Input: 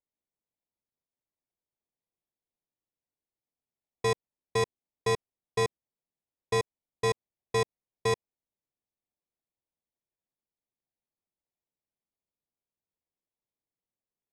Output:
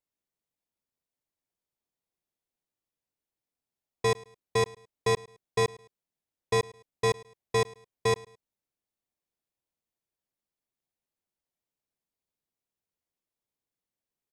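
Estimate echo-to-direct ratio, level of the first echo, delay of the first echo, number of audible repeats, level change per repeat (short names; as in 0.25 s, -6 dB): -22.0 dB, -22.5 dB, 0.107 s, 2, -10.0 dB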